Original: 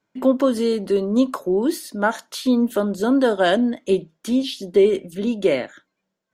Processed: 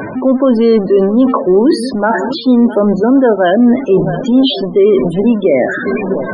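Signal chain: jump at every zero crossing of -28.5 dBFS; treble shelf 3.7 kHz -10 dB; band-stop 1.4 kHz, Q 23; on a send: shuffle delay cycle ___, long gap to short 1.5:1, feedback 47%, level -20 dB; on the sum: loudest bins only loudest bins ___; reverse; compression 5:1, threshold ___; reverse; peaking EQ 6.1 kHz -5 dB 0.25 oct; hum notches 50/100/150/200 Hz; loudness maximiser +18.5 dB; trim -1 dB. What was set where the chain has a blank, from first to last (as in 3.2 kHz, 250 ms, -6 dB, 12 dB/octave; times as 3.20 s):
1105 ms, 32, -24 dBFS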